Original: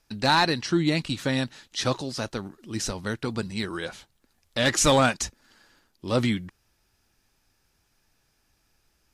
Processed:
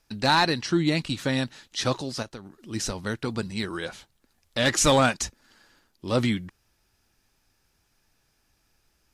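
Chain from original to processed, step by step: 2.22–2.72 compressor 10:1, threshold -36 dBFS, peak gain reduction 10.5 dB

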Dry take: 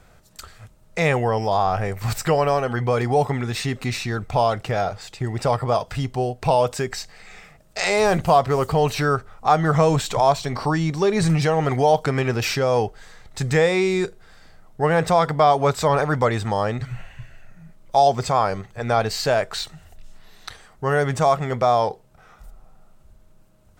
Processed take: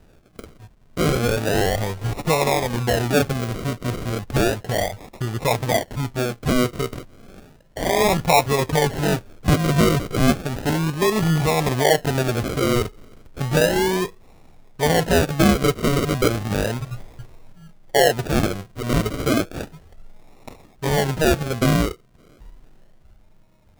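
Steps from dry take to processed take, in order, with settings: decimation with a swept rate 40×, swing 60% 0.33 Hz

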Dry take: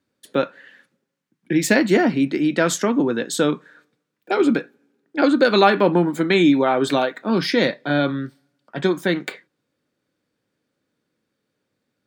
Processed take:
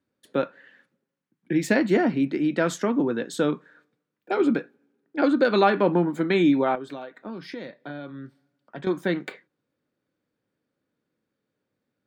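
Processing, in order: high shelf 3200 Hz -9 dB; 6.75–8.87 compressor 6:1, threshold -30 dBFS, peak gain reduction 15 dB; gain -4 dB

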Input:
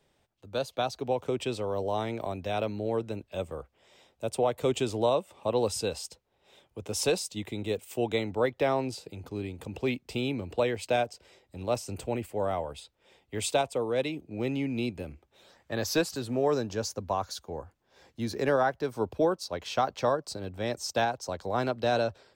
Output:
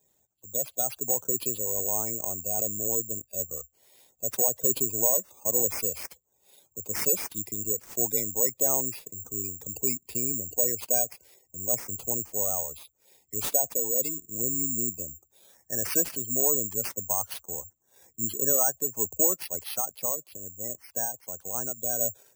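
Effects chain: HPF 47 Hz 24 dB/oct; spectral gate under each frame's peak -15 dB strong; 19.77–22.01 ladder low-pass 4300 Hz, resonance 20%; careless resampling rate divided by 6×, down none, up zero stuff; gain -5.5 dB

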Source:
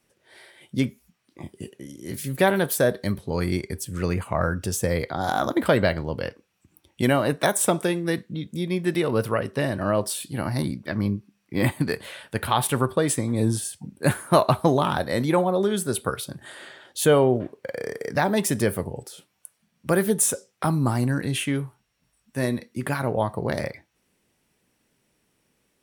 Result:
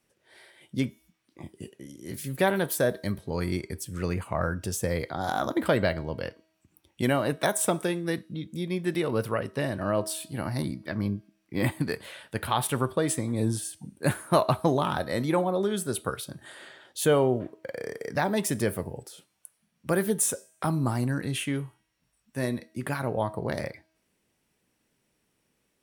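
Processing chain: resonator 320 Hz, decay 0.81 s, mix 40%

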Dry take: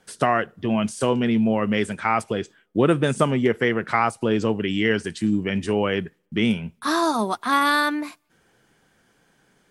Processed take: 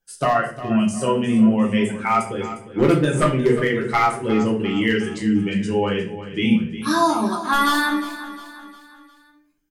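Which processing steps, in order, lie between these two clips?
per-bin expansion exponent 1.5; high shelf 8500 Hz +5 dB; wavefolder -12 dBFS; feedback echo 0.355 s, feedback 46%, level -13.5 dB; shoebox room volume 50 m³, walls mixed, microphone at 0.74 m

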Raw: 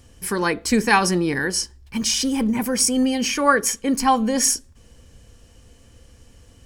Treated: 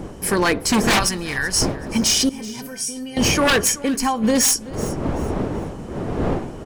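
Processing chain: wind noise 400 Hz -30 dBFS; 0.99–1.62 bell 300 Hz -14 dB 2.8 oct; 2.29–3.17 resonator 140 Hz, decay 0.29 s, harmonics odd, mix 90%; 3.75–4.24 compressor 10:1, threshold -22 dBFS, peak gain reduction 10.5 dB; wavefolder -15 dBFS; feedback echo 0.38 s, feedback 31%, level -19 dB; gain +4.5 dB

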